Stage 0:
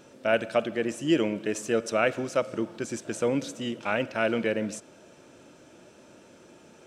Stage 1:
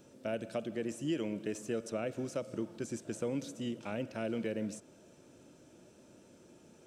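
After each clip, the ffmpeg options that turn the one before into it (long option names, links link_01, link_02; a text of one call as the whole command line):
ffmpeg -i in.wav -filter_complex "[0:a]acrossover=split=660|3000[link_01][link_02][link_03];[link_01]acompressor=threshold=-27dB:ratio=4[link_04];[link_02]acompressor=threshold=-35dB:ratio=4[link_05];[link_03]acompressor=threshold=-42dB:ratio=4[link_06];[link_04][link_05][link_06]amix=inputs=3:normalize=0,equalizer=frequency=1600:width=0.32:gain=-9,volume=-2.5dB" out.wav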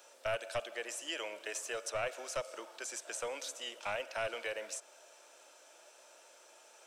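ffmpeg -i in.wav -filter_complex "[0:a]highpass=frequency=660:width=0.5412,highpass=frequency=660:width=1.3066,acrossover=split=1400[link_01][link_02];[link_01]aeval=exprs='clip(val(0),-1,0.00668)':channel_layout=same[link_03];[link_03][link_02]amix=inputs=2:normalize=0,volume=7.5dB" out.wav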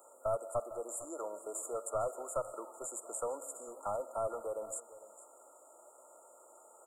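ffmpeg -i in.wav -af "afftfilt=real='re*(1-between(b*sr/4096,1400,6800))':imag='im*(1-between(b*sr/4096,1400,6800))':win_size=4096:overlap=0.75,aecho=1:1:452:0.15,volume=2.5dB" out.wav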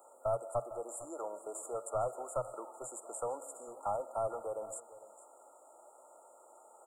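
ffmpeg -i in.wav -af "equalizer=frequency=125:width_type=o:width=0.33:gain=9,equalizer=frequency=800:width_type=o:width=0.33:gain=7,equalizer=frequency=1600:width_type=o:width=0.33:gain=-3,equalizer=frequency=6300:width_type=o:width=0.33:gain=-8,equalizer=frequency=12500:width_type=o:width=0.33:gain=-7,volume=-1dB" out.wav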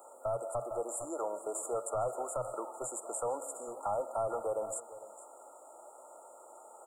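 ffmpeg -i in.wav -af "alimiter=level_in=7dB:limit=-24dB:level=0:latency=1:release=30,volume=-7dB,volume=5.5dB" out.wav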